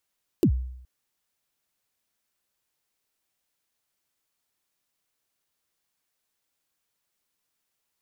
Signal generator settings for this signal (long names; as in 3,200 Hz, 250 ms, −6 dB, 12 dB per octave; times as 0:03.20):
synth kick length 0.42 s, from 410 Hz, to 63 Hz, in 82 ms, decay 0.75 s, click on, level −13.5 dB